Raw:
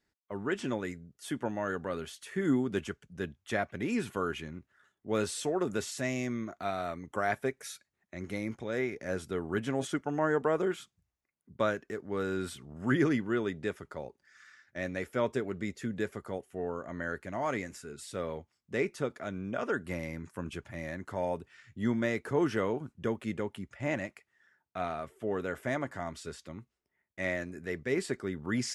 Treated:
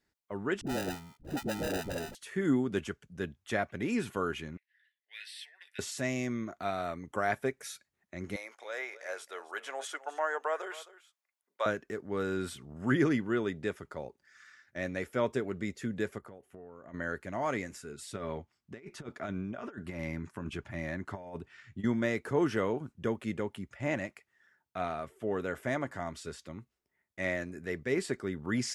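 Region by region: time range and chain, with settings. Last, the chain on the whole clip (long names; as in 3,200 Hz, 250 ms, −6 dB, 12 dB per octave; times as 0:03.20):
0:00.61–0:02.15: sample-rate reduction 1,100 Hz + all-pass dispersion highs, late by 58 ms, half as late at 430 Hz
0:04.57–0:05.79: four-pole ladder high-pass 1,700 Hz, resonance 75% + parametric band 5,000 Hz +9 dB 2.7 octaves + phaser with its sweep stopped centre 3,000 Hz, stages 4
0:08.36–0:11.66: high-pass filter 590 Hz 24 dB per octave + single-tap delay 264 ms −17 dB
0:16.18–0:16.94: parametric band 6,600 Hz −7.5 dB 2.2 octaves + downward compressor 8 to 1, threshold −45 dBFS
0:18.13–0:21.84: high-shelf EQ 6,800 Hz −10 dB + notch filter 500 Hz, Q 5.6 + compressor whose output falls as the input rises −38 dBFS, ratio −0.5
whole clip: no processing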